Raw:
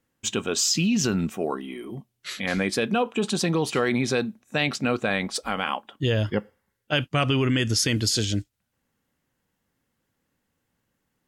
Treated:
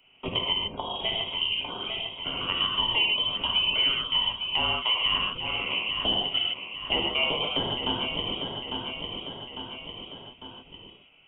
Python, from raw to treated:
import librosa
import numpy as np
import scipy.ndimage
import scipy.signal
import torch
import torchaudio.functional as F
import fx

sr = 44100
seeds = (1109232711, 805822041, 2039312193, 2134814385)

p1 = scipy.signal.sosfilt(scipy.signal.butter(4, 330.0, 'highpass', fs=sr, output='sos'), x)
p2 = fx.dynamic_eq(p1, sr, hz=920.0, q=1.0, threshold_db=-37.0, ratio=4.0, max_db=-5)
p3 = fx.level_steps(p2, sr, step_db=14)
p4 = fx.fixed_phaser(p3, sr, hz=730.0, stages=4)
p5 = p4 + fx.echo_feedback(p4, sr, ms=851, feedback_pct=28, wet_db=-11.0, dry=0)
p6 = fx.rev_gated(p5, sr, seeds[0], gate_ms=170, shape='flat', drr_db=-3.0)
p7 = fx.freq_invert(p6, sr, carrier_hz=3500)
p8 = fx.band_squash(p7, sr, depth_pct=70)
y = p8 * 10.0 ** (5.5 / 20.0)